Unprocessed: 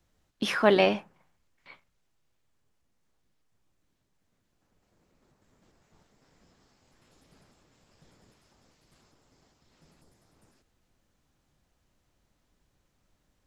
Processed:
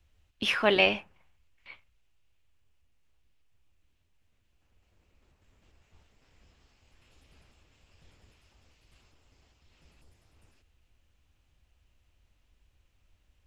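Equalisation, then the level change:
low shelf with overshoot 110 Hz +10 dB, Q 1.5
parametric band 2,700 Hz +10.5 dB 0.73 octaves
−3.5 dB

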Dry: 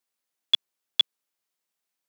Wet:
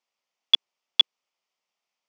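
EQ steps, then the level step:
loudspeaker in its box 270–5,500 Hz, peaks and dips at 310 Hz −10 dB, 450 Hz −4 dB, 1,600 Hz −10 dB, 4,000 Hz −8 dB
+6.5 dB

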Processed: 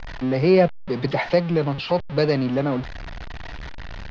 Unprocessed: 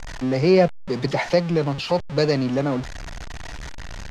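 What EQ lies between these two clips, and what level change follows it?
low-pass filter 4,400 Hz 24 dB per octave
0.0 dB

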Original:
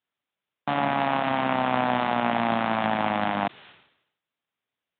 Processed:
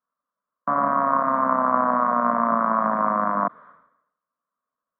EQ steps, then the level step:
low-pass with resonance 1,100 Hz, resonance Q 4.9
high-frequency loss of the air 83 metres
phaser with its sweep stopped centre 550 Hz, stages 8
+1.0 dB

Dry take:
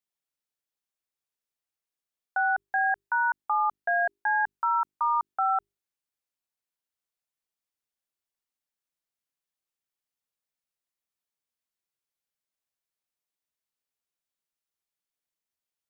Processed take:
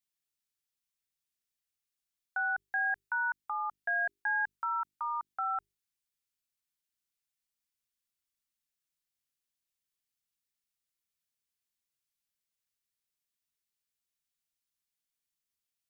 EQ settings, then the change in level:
parametric band 630 Hz −14 dB 2 octaves
dynamic equaliser 1,100 Hz, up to −5 dB, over −46 dBFS, Q 3.6
+2.0 dB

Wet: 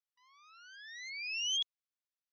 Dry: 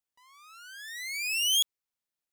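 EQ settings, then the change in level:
linear-phase brick-wall band-pass 980–6,400 Hz
−7.5 dB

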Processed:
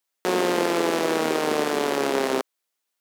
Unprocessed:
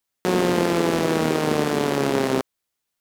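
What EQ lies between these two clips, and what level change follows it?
high-pass filter 330 Hz 12 dB per octave
0.0 dB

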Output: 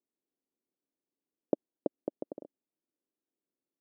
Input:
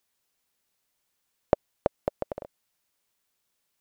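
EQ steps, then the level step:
four-pole ladder band-pass 350 Hz, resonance 50%
low-shelf EQ 410 Hz +11.5 dB
0.0 dB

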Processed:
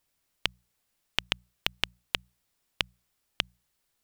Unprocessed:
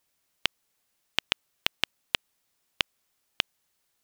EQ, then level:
low-shelf EQ 120 Hz +9.5 dB
mains-hum notches 60/120/180 Hz
notch filter 6,300 Hz, Q 27
−2.0 dB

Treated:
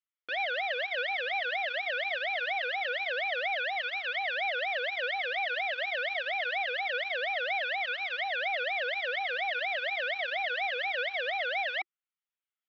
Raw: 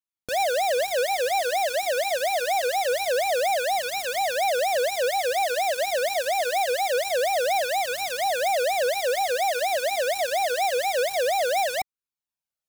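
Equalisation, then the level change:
high-frequency loss of the air 220 metres
loudspeaker in its box 130–3,200 Hz, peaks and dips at 350 Hz +9 dB, 1,300 Hz +9 dB, 2,000 Hz +7 dB, 3,200 Hz +6 dB
first difference
+8.5 dB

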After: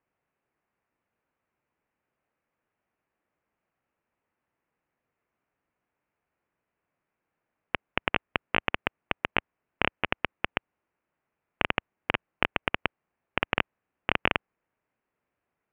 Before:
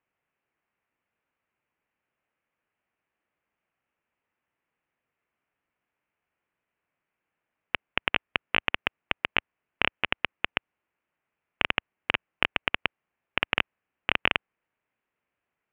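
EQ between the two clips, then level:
low-pass filter 1,200 Hz 6 dB per octave
+4.0 dB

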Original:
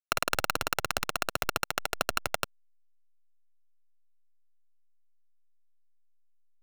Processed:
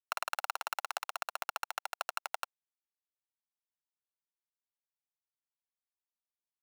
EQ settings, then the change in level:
four-pole ladder high-pass 710 Hz, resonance 50%
0.0 dB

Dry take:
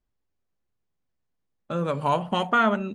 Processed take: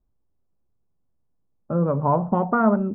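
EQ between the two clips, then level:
low-pass filter 1,200 Hz 24 dB per octave
low-shelf EQ 360 Hz +7 dB
+1.5 dB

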